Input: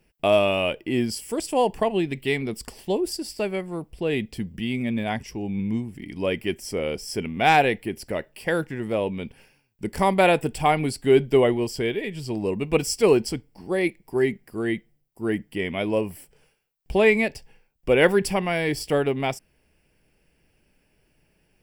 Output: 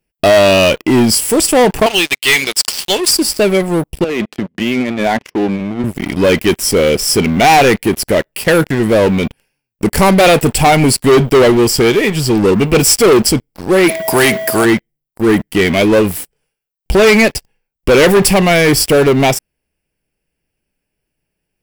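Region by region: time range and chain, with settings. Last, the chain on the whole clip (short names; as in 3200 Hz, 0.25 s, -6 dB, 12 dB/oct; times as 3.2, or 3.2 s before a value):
1.86–3.11 band-pass 4400 Hz, Q 1.1 + sample leveller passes 3
4.04–5.84 air absorption 300 m + negative-ratio compressor -28 dBFS, ratio -0.5 + HPF 290 Hz
13.88–14.64 HPF 430 Hz 6 dB/oct + whine 650 Hz -41 dBFS + spectral compressor 2:1
whole clip: high shelf 8200 Hz +8 dB; sample leveller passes 5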